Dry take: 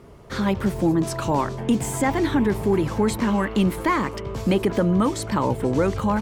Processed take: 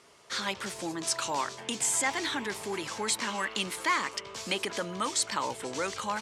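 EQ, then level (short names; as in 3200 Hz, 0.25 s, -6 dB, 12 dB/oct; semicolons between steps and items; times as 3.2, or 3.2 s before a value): weighting filter ITU-R 468; -6.5 dB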